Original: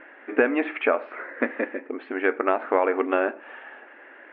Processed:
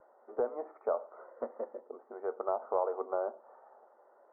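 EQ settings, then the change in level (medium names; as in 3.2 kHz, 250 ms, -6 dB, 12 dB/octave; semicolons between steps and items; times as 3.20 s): steep low-pass 1.7 kHz 72 dB/octave; distance through air 210 m; static phaser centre 690 Hz, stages 4; -7.0 dB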